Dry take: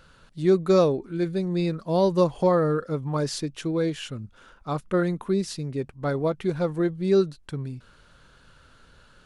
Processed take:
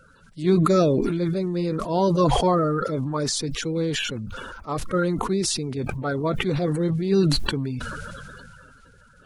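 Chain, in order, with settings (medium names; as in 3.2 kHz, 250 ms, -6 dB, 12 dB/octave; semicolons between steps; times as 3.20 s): coarse spectral quantiser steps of 30 dB; decay stretcher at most 22 dB/s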